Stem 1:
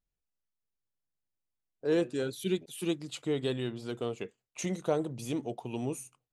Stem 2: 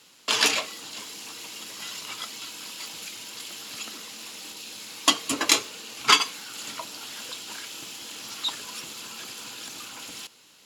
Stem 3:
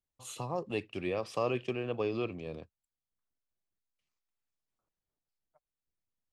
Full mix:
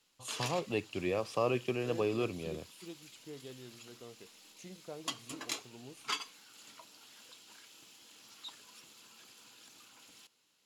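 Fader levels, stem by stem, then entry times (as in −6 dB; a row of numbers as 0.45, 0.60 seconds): −17.0, −18.5, +0.5 decibels; 0.00, 0.00, 0.00 seconds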